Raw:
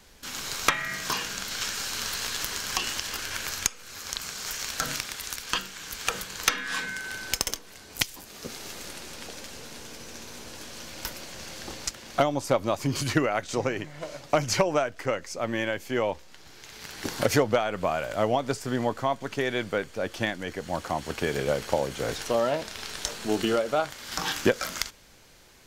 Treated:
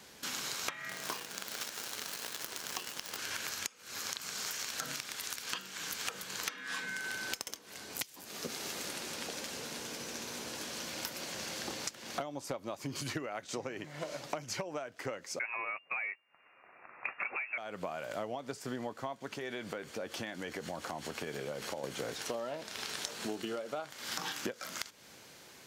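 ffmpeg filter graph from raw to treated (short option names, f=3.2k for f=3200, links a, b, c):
-filter_complex "[0:a]asettb=1/sr,asplit=3[a][b][c];[a]atrim=end=0.894[d];[b]atrim=start=0.89:end=3.17,asetpts=PTS-STARTPTS,afade=t=in:d=0.004:c=qsin,afade=t=out:st=2.276:d=0.004:c=qsin,equalizer=f=490:w=0.64:g=5.5,acrusher=bits=5:dc=4:mix=0:aa=0.000001[e];[c]atrim=start=3.166[f];[d][e]acrossfade=d=0.004:c1=hsin:c2=qsin[g];[g][f]acrossfade=d=0.004:c1=qsin:c2=hsin,asettb=1/sr,asplit=3[h][i][j];[h]atrim=end=15.394[k];[i]atrim=start=15.39:end=17.58,asetpts=PTS-STARTPTS,afade=t=in:d=0.004:c=qsin,afade=t=out:st=2.186:d=0.004:c=qsin,agate=range=-18dB:threshold=-35dB:ratio=16:release=100:detection=peak,asplit=2[l][m];[m]highpass=f=720:p=1,volume=17dB,asoftclip=type=tanh:threshold=-9.5dB[n];[l][n]amix=inputs=2:normalize=0,lowpass=f=1.9k:p=1,volume=-6dB,lowpass=f=2.4k:t=q:w=0.5098,lowpass=f=2.4k:t=q:w=0.6013,lowpass=f=2.4k:t=q:w=0.9,lowpass=f=2.4k:t=q:w=2.563,afreqshift=-2800[o];[j]atrim=start=17.576[p];[k][o]acrossfade=d=0.004:c1=hsin:c2=qsin[q];[q][p]acrossfade=d=0.004:c1=qsin:c2=hsin,asettb=1/sr,asplit=3[r][s][t];[r]atrim=end=19.354[u];[s]atrim=start=19.35:end=21.84,asetpts=PTS-STARTPTS,afade=t=in:d=0.004:c=qsin,afade=t=out:st=2.486:d=0.004:c=qsin,acompressor=threshold=-36dB:ratio=3:attack=3.2:release=140:knee=1:detection=peak,asplit=2[v][w];[w]adelay=13,volume=-13.5dB[x];[v][x]amix=inputs=2:normalize=0,atrim=end_sample=109809[y];[t]atrim=start=21.836[z];[u][y]acrossfade=d=0.004:c1=hsin:c2=qsin[aa];[aa][z]acrossfade=d=0.004:c1=qsin:c2=hsin,highpass=140,acompressor=threshold=-36dB:ratio=12,volume=1dB"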